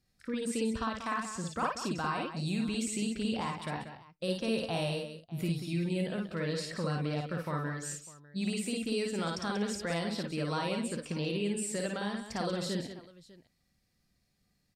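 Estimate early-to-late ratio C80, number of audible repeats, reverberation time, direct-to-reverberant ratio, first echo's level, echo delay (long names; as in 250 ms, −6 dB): no reverb audible, 4, no reverb audible, no reverb audible, −2.0 dB, 54 ms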